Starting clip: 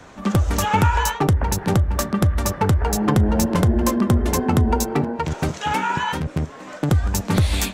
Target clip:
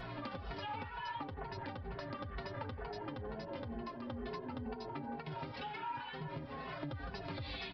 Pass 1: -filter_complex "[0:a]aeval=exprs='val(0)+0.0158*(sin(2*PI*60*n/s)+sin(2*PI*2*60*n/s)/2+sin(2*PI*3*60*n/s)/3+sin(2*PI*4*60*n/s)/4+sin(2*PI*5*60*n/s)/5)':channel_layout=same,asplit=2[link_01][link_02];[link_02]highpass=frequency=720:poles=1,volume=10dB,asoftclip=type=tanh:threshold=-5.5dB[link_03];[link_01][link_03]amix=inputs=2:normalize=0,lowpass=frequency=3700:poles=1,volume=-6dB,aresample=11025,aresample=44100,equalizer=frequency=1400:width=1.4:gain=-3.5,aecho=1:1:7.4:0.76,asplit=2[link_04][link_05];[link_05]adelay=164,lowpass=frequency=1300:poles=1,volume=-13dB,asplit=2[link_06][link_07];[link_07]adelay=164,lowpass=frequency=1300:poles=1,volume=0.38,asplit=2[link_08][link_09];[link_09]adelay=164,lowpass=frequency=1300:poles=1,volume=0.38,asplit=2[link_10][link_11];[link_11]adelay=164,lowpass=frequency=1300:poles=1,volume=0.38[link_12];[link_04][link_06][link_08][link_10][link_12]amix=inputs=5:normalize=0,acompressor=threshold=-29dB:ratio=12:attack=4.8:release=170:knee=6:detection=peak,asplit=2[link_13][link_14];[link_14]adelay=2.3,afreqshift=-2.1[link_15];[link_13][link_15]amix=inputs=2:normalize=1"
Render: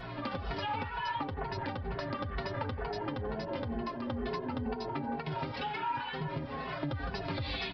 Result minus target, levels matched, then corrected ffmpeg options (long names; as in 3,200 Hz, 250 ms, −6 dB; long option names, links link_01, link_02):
downward compressor: peak gain reduction −7.5 dB
-filter_complex "[0:a]aeval=exprs='val(0)+0.0158*(sin(2*PI*60*n/s)+sin(2*PI*2*60*n/s)/2+sin(2*PI*3*60*n/s)/3+sin(2*PI*4*60*n/s)/4+sin(2*PI*5*60*n/s)/5)':channel_layout=same,asplit=2[link_01][link_02];[link_02]highpass=frequency=720:poles=1,volume=10dB,asoftclip=type=tanh:threshold=-5.5dB[link_03];[link_01][link_03]amix=inputs=2:normalize=0,lowpass=frequency=3700:poles=1,volume=-6dB,aresample=11025,aresample=44100,equalizer=frequency=1400:width=1.4:gain=-3.5,aecho=1:1:7.4:0.76,asplit=2[link_04][link_05];[link_05]adelay=164,lowpass=frequency=1300:poles=1,volume=-13dB,asplit=2[link_06][link_07];[link_07]adelay=164,lowpass=frequency=1300:poles=1,volume=0.38,asplit=2[link_08][link_09];[link_09]adelay=164,lowpass=frequency=1300:poles=1,volume=0.38,asplit=2[link_10][link_11];[link_11]adelay=164,lowpass=frequency=1300:poles=1,volume=0.38[link_12];[link_04][link_06][link_08][link_10][link_12]amix=inputs=5:normalize=0,acompressor=threshold=-37dB:ratio=12:attack=4.8:release=170:knee=6:detection=peak,asplit=2[link_13][link_14];[link_14]adelay=2.3,afreqshift=-2.1[link_15];[link_13][link_15]amix=inputs=2:normalize=1"